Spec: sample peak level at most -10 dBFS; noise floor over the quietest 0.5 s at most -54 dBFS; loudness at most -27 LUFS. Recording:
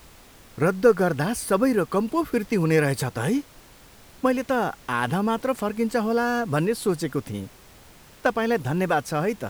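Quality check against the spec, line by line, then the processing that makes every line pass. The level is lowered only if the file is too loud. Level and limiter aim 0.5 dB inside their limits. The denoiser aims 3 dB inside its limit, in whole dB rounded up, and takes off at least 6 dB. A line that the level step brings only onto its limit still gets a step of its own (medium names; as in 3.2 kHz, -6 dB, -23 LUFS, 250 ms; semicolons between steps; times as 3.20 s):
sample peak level -5.0 dBFS: fail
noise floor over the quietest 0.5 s -50 dBFS: fail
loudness -24.0 LUFS: fail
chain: noise reduction 6 dB, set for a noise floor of -50 dBFS; trim -3.5 dB; peak limiter -10.5 dBFS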